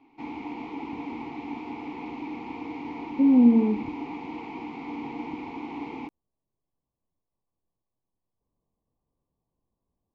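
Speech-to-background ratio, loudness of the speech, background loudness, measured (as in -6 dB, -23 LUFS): 16.5 dB, -20.0 LUFS, -36.5 LUFS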